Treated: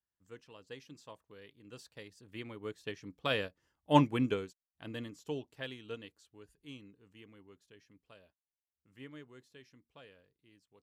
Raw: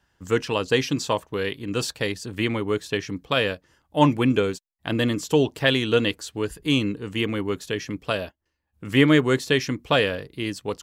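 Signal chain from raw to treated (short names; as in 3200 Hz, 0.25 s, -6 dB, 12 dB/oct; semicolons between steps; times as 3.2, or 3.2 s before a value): Doppler pass-by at 3.67, 7 m/s, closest 4.5 m; upward expander 1.5:1, over -36 dBFS; gain -5 dB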